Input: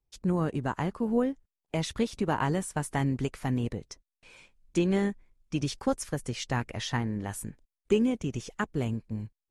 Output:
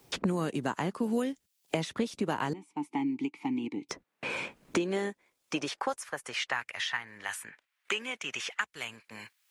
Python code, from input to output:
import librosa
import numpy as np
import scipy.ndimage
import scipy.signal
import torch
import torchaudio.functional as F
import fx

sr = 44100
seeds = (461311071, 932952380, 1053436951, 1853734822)

y = fx.filter_sweep_highpass(x, sr, from_hz=190.0, to_hz=2000.0, start_s=4.26, end_s=6.94, q=0.87)
y = fx.vowel_filter(y, sr, vowel='u', at=(2.53, 3.89))
y = fx.band_squash(y, sr, depth_pct=100)